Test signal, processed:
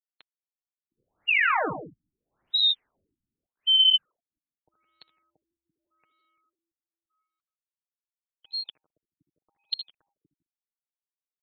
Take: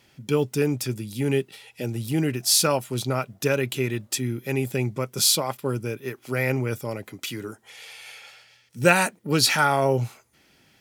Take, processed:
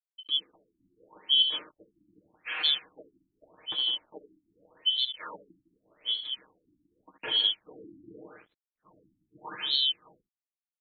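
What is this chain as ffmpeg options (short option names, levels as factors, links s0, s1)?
-filter_complex "[0:a]afftfilt=real='real(if(lt(b,272),68*(eq(floor(b/68),0)*2+eq(floor(b/68),1)*3+eq(floor(b/68),2)*0+eq(floor(b/68),3)*1)+mod(b,68),b),0)':imag='imag(if(lt(b,272),68*(eq(floor(b/68),0)*2+eq(floor(b/68),1)*3+eq(floor(b/68),2)*0+eq(floor(b/68),3)*1)+mod(b,68),b),0)':win_size=2048:overlap=0.75,crystalizer=i=6.5:c=0,areverse,acompressor=threshold=0.0794:ratio=4,areverse,highpass=120,lowpass=7300,bass=f=250:g=-5,treble=f=4000:g=-1,aecho=1:1:6.5:0.64,asplit=2[s0][s1];[s1]aecho=0:1:63|77|154|166|211:0.237|0.282|0.188|0.237|0.112[s2];[s0][s2]amix=inputs=2:normalize=0,anlmdn=2.51,dynaudnorm=f=170:g=7:m=2.82,lowshelf=f=300:g=4.5,aeval=exprs='sgn(val(0))*max(abs(val(0))-0.00473,0)':c=same,afftfilt=real='re*lt(b*sr/1024,330*pow(4400/330,0.5+0.5*sin(2*PI*0.84*pts/sr)))':imag='im*lt(b*sr/1024,330*pow(4400/330,0.5+0.5*sin(2*PI*0.84*pts/sr)))':win_size=1024:overlap=0.75,volume=0.398"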